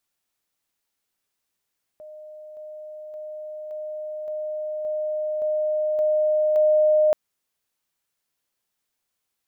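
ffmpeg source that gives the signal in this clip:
ffmpeg -f lavfi -i "aevalsrc='pow(10,(-38.5+3*floor(t/0.57))/20)*sin(2*PI*613*t)':duration=5.13:sample_rate=44100" out.wav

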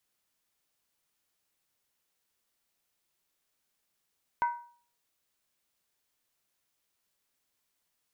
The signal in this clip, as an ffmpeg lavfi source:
ffmpeg -f lavfi -i "aevalsrc='0.0794*pow(10,-3*t/0.47)*sin(2*PI*954*t)+0.0251*pow(10,-3*t/0.372)*sin(2*PI*1520.7*t)+0.00794*pow(10,-3*t/0.322)*sin(2*PI*2037.7*t)+0.00251*pow(10,-3*t/0.31)*sin(2*PI*2190.4*t)+0.000794*pow(10,-3*t/0.289)*sin(2*PI*2531*t)':duration=0.63:sample_rate=44100" out.wav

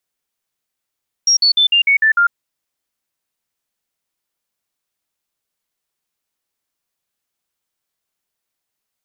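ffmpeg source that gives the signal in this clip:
ffmpeg -f lavfi -i "aevalsrc='0.355*clip(min(mod(t,0.15),0.1-mod(t,0.15))/0.005,0,1)*sin(2*PI*5600*pow(2,-floor(t/0.15)/3)*mod(t,0.15))':duration=1.05:sample_rate=44100" out.wav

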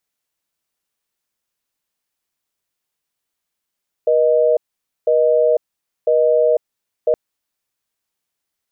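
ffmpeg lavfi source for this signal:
ffmpeg -f lavfi -i "aevalsrc='0.2*(sin(2*PI*480*t)+sin(2*PI*620*t))*clip(min(mod(t,1),0.5-mod(t,1))/0.005,0,1)':duration=3.07:sample_rate=44100" out.wav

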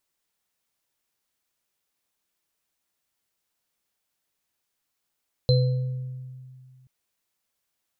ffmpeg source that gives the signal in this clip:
ffmpeg -f lavfi -i "aevalsrc='0.168*pow(10,-3*t/2.22)*sin(2*PI*129*t)+0.0944*pow(10,-3*t/0.95)*sin(2*PI*501*t)+0.0631*pow(10,-3*t/0.45)*sin(2*PI*4090*t)':duration=1.38:sample_rate=44100" out.wav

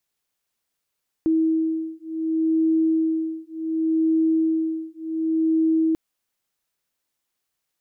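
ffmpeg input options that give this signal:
ffmpeg -f lavfi -i "aevalsrc='0.0794*(sin(2*PI*321*t)+sin(2*PI*321.68*t))':duration=4.69:sample_rate=44100" out.wav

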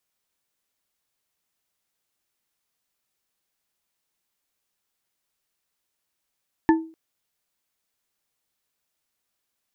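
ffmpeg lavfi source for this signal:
ffmpeg -f lavfi -i "aevalsrc='0.282*pow(10,-3*t/0.38)*sin(2*PI*323*t)+0.158*pow(10,-3*t/0.187)*sin(2*PI*890.5*t)+0.0891*pow(10,-3*t/0.117)*sin(2*PI*1745.5*t)':duration=0.25:sample_rate=44100" out.wav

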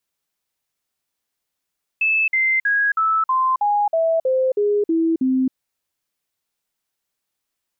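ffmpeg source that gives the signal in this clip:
ffmpeg -f lavfi -i "aevalsrc='0.178*clip(min(mod(t,0.32),0.27-mod(t,0.32))/0.005,0,1)*sin(2*PI*2620*pow(2,-floor(t/0.32)/3)*mod(t,0.32))':duration=3.52:sample_rate=44100" out.wav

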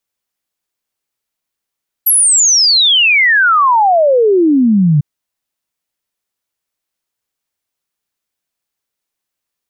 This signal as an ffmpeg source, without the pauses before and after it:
ffmpeg -f lavfi -i "aevalsrc='0.473*clip(min(t,2.95-t)/0.01,0,1)*sin(2*PI*12000*2.95/log(140/12000)*(exp(log(140/12000)*t/2.95)-1))':duration=2.95:sample_rate=44100" out.wav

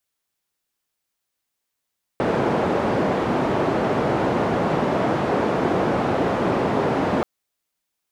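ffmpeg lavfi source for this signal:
ffmpeg -f lavfi -i "anoisesrc=color=white:duration=5.03:sample_rate=44100:seed=1,highpass=frequency=130,lowpass=frequency=640,volume=-0.3dB" out.wav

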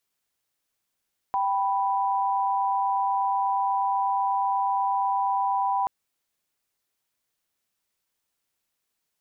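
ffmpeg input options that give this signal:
ffmpeg -f lavfi -i "aevalsrc='0.0596*(sin(2*PI*783.99*t)+sin(2*PI*987.77*t))':duration=4.53:sample_rate=44100" out.wav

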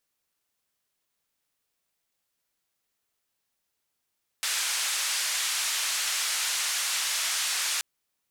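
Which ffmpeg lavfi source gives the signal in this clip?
ffmpeg -f lavfi -i "anoisesrc=color=white:duration=3.38:sample_rate=44100:seed=1,highpass=frequency=1300,lowpass=frequency=8600,volume=-19dB" out.wav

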